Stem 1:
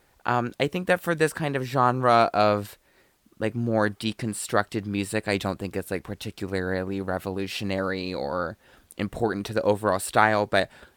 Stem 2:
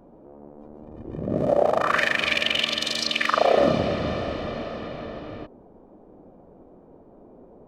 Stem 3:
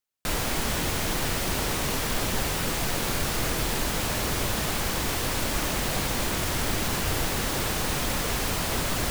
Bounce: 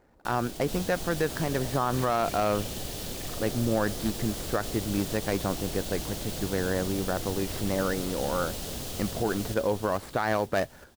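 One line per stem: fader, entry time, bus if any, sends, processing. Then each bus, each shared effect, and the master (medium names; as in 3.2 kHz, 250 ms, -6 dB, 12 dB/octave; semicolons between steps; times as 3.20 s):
-0.5 dB, 0.00 s, no bus, no send, no echo send, median filter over 15 samples; modulation noise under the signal 25 dB
-16.0 dB, 0.00 s, bus A, no send, no echo send, none
-6.5 dB, 0.00 s, bus A, no send, echo send -3.5 dB, high-order bell 1.5 kHz -9.5 dB
bus A: 0.0 dB, peak limiter -32.5 dBFS, peak gain reduction 14 dB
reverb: none
echo: feedback delay 433 ms, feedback 50%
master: peak limiter -16 dBFS, peak gain reduction 10.5 dB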